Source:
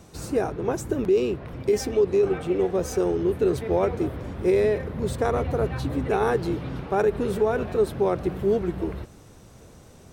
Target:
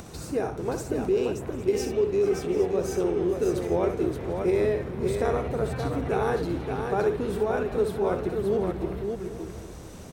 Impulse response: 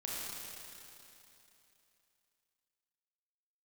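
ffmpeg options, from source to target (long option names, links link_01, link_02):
-filter_complex "[0:a]asplit=2[link_01][link_02];[link_02]aecho=0:1:442:0.133[link_03];[link_01][link_03]amix=inputs=2:normalize=0,acompressor=mode=upward:threshold=-30dB:ratio=2.5,asplit=2[link_04][link_05];[link_05]aecho=0:1:64|576|745|806:0.398|0.562|0.126|0.168[link_06];[link_04][link_06]amix=inputs=2:normalize=0,volume=-4dB"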